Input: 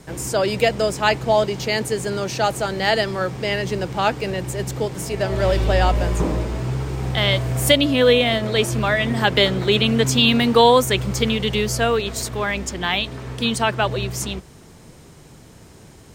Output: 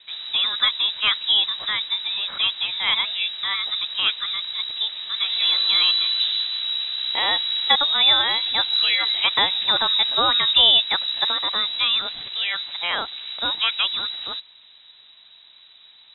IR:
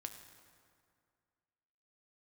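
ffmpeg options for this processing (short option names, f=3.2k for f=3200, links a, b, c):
-filter_complex "[0:a]asplit=3[a][b][c];[a]afade=t=out:st=8.27:d=0.02[d];[b]asubboost=boost=8:cutoff=70,afade=t=in:st=8.27:d=0.02,afade=t=out:st=9.15:d=0.02[e];[c]afade=t=in:st=9.15:d=0.02[f];[d][e][f]amix=inputs=3:normalize=0,asplit=2[g][h];[h]acrusher=bits=4:mix=0:aa=0.5,volume=-11dB[i];[g][i]amix=inputs=2:normalize=0,lowpass=f=3.4k:t=q:w=0.5098,lowpass=f=3.4k:t=q:w=0.6013,lowpass=f=3.4k:t=q:w=0.9,lowpass=f=3.4k:t=q:w=2.563,afreqshift=-4000,volume=-4.5dB"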